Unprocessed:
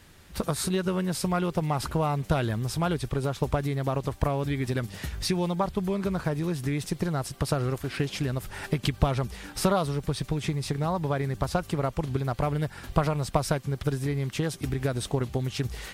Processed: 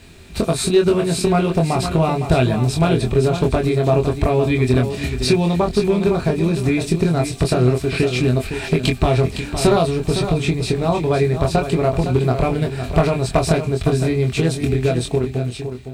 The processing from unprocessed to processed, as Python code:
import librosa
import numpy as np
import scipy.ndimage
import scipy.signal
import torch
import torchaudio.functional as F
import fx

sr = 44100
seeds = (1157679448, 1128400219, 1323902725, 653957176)

p1 = fx.fade_out_tail(x, sr, length_s=1.32)
p2 = fx.low_shelf(p1, sr, hz=300.0, db=6.5)
p3 = fx.small_body(p2, sr, hz=(400.0, 660.0, 2400.0), ring_ms=65, db=11)
p4 = fx.quant_dither(p3, sr, seeds[0], bits=12, dither='triangular')
p5 = fx.graphic_eq_31(p4, sr, hz=(250, 2500, 4000, 8000, 12500), db=(5, 7, 8, 6, -6))
p6 = np.clip(p5, -10.0 ** (-11.0 / 20.0), 10.0 ** (-11.0 / 20.0))
p7 = fx.doubler(p6, sr, ms=24.0, db=-4)
p8 = p7 + fx.echo_feedback(p7, sr, ms=510, feedback_pct=15, wet_db=-9, dry=0)
y = p8 * librosa.db_to_amplitude(3.0)